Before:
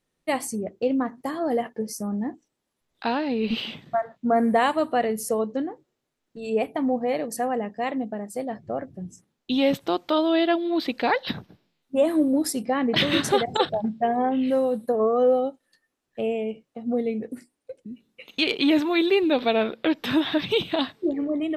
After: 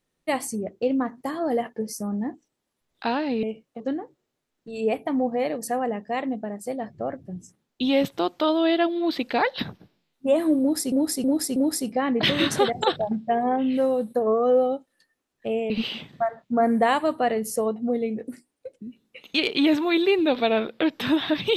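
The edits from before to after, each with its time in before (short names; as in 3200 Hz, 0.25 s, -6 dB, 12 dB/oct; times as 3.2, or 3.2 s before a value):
3.43–5.49 swap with 16.43–16.8
12.29–12.61 loop, 4 plays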